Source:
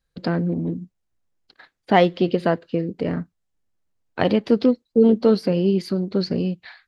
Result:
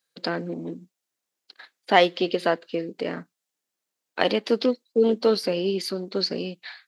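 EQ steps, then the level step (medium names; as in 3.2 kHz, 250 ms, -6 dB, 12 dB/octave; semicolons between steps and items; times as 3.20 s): high-pass 320 Hz 12 dB/octave; treble shelf 2.3 kHz +10 dB; -2.0 dB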